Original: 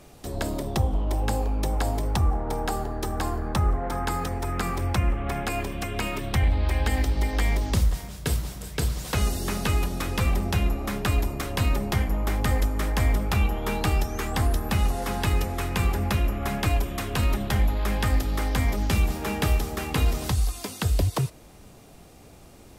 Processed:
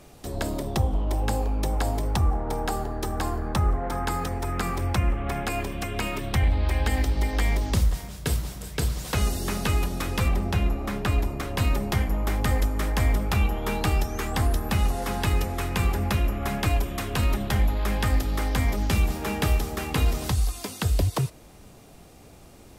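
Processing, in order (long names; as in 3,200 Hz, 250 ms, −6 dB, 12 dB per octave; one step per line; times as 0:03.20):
0:10.28–0:11.58: high-shelf EQ 4,300 Hz −6.5 dB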